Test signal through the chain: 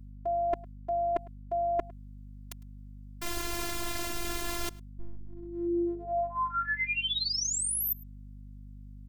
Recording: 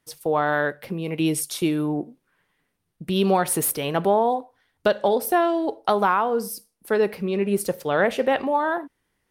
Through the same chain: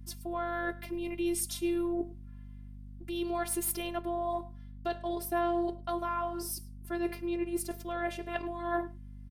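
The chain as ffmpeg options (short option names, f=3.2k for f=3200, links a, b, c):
-filter_complex "[0:a]areverse,acompressor=threshold=-26dB:ratio=10,areverse,asplit=2[a][b];[b]adelay=105,volume=-22dB,highshelf=f=4k:g=-2.36[c];[a][c]amix=inputs=2:normalize=0,afftfilt=real='hypot(re,im)*cos(PI*b)':imag='0':win_size=512:overlap=0.75,aeval=exprs='val(0)+0.00562*(sin(2*PI*50*n/s)+sin(2*PI*2*50*n/s)/2+sin(2*PI*3*50*n/s)/3+sin(2*PI*4*50*n/s)/4+sin(2*PI*5*50*n/s)/5)':c=same"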